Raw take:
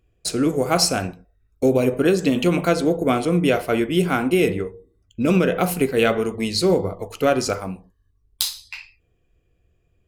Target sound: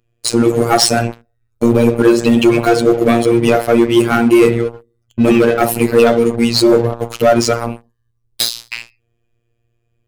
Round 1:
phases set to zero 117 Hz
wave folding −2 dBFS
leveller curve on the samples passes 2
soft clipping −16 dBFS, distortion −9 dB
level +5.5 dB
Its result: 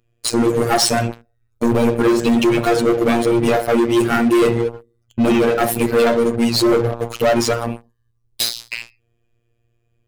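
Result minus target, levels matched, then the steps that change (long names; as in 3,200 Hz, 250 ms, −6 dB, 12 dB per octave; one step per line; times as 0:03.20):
soft clipping: distortion +11 dB
change: soft clipping −6 dBFS, distortion −20 dB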